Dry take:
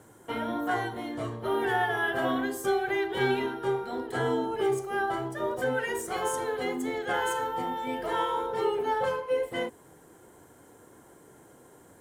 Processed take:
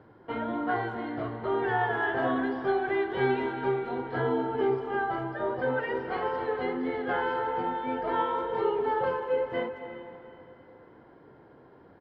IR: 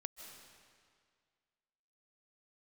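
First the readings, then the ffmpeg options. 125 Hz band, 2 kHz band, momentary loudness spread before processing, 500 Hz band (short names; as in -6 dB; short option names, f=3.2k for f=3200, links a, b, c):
+1.0 dB, -1.0 dB, 6 LU, +0.5 dB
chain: -filter_complex "[0:a]asplit=2[a][b];[1:a]atrim=start_sample=2205,asetrate=31752,aresample=44100,lowpass=2.5k[c];[b][c]afir=irnorm=-1:irlink=0,volume=5dB[d];[a][d]amix=inputs=2:normalize=0,aresample=11025,aresample=44100,asplit=2[e][f];[f]adelay=190,highpass=300,lowpass=3.4k,asoftclip=type=hard:threshold=-16.5dB,volume=-20dB[g];[e][g]amix=inputs=2:normalize=0,volume=-7dB"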